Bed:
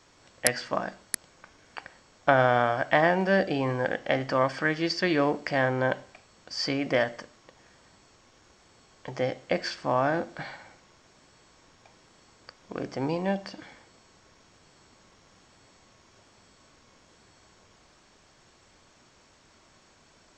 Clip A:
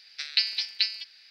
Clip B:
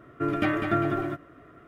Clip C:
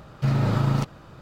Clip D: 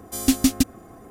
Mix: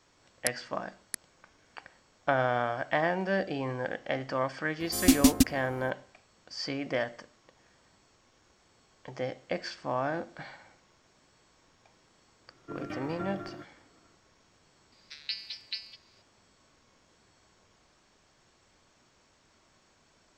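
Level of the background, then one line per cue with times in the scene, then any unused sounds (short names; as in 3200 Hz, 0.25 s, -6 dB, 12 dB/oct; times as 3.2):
bed -6 dB
4.8 add D -2.5 dB
12.48 add B -14.5 dB
14.92 add A -11.5 dB
not used: C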